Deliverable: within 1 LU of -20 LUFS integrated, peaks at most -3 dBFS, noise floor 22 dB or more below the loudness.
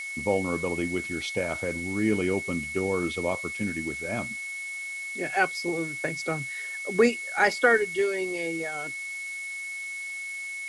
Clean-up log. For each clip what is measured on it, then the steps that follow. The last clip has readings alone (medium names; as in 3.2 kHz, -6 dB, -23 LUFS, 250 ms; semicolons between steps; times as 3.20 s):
steady tone 2.2 kHz; tone level -33 dBFS; noise floor -36 dBFS; noise floor target -50 dBFS; loudness -28.0 LUFS; peak level -9.0 dBFS; loudness target -20.0 LUFS
-> band-stop 2.2 kHz, Q 30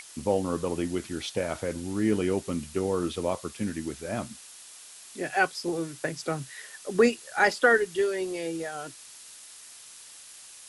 steady tone not found; noise floor -48 dBFS; noise floor target -51 dBFS
-> noise print and reduce 6 dB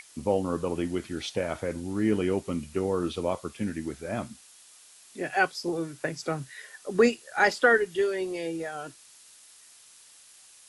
noise floor -54 dBFS; loudness -28.5 LUFS; peak level -8.5 dBFS; loudness target -20.0 LUFS
-> trim +8.5 dB; peak limiter -3 dBFS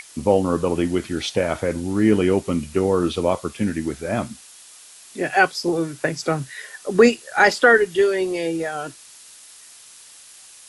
loudness -20.5 LUFS; peak level -3.0 dBFS; noise floor -46 dBFS